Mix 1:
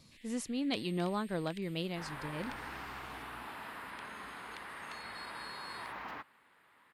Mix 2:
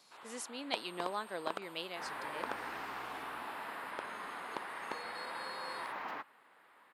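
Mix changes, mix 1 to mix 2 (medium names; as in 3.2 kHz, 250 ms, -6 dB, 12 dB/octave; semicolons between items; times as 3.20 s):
first sound: remove steep high-pass 1.8 kHz 96 dB/octave; second sound: remove high-pass 980 Hz 6 dB/octave; master: add high-pass 540 Hz 12 dB/octave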